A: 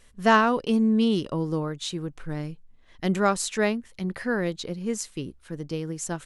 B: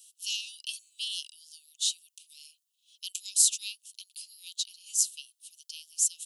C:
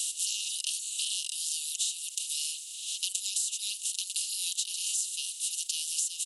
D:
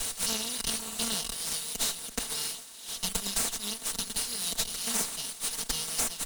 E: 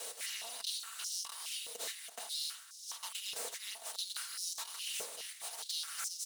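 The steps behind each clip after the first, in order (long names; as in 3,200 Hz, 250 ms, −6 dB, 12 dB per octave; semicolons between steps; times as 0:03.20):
Butterworth high-pass 2,700 Hz 96 dB per octave; first difference; level +9 dB
compressor on every frequency bin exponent 0.4; comb filter 4.3 ms, depth 67%; downward compressor 10 to 1, threshold −28 dBFS, peak gain reduction 15 dB
lower of the sound and its delayed copy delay 4.5 ms; multiband upward and downward expander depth 70%; level +2.5 dB
soft clipping −26 dBFS, distortion −12 dB; flanger 0.61 Hz, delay 7.2 ms, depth 7.4 ms, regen +83%; high-pass on a step sequencer 4.8 Hz 500–5,500 Hz; level −5 dB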